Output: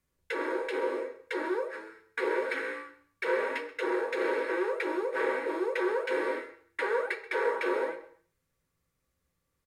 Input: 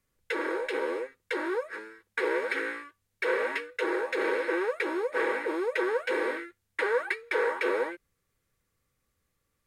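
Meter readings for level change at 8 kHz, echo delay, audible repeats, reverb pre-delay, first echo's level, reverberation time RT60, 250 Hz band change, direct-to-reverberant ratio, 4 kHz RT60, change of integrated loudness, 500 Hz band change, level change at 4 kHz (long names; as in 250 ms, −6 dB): can't be measured, 132 ms, 1, 9 ms, −18.0 dB, 0.55 s, −0.5 dB, 4.5 dB, 0.55 s, −1.5 dB, −1.0 dB, −3.0 dB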